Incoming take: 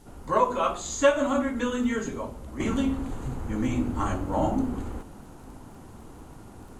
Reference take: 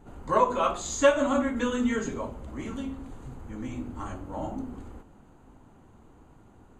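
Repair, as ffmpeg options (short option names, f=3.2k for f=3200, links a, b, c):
-af "adeclick=t=4,agate=range=-21dB:threshold=-37dB,asetnsamples=n=441:p=0,asendcmd='2.6 volume volume -9dB',volume=0dB"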